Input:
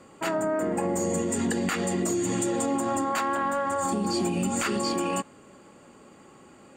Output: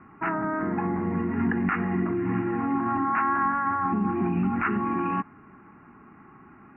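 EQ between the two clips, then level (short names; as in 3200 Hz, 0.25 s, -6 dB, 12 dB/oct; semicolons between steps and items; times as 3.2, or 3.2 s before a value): Chebyshev low-pass 3100 Hz, order 10; fixed phaser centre 1300 Hz, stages 4; +5.5 dB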